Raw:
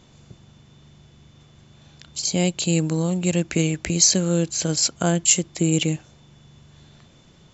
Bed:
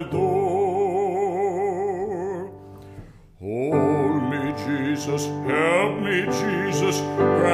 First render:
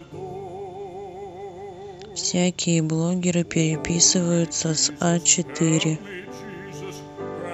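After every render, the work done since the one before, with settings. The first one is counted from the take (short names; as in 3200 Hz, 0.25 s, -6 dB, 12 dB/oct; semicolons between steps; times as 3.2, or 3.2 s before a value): add bed -13.5 dB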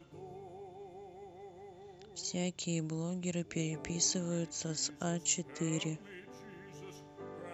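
gain -15 dB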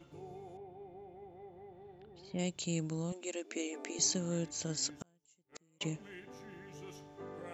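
0.57–2.39 air absorption 430 m; 3.12–3.99 brick-wall FIR high-pass 220 Hz; 4.96–5.81 flipped gate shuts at -31 dBFS, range -37 dB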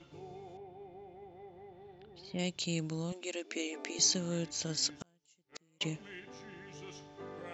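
LPF 5900 Hz 24 dB/oct; high shelf 2200 Hz +8 dB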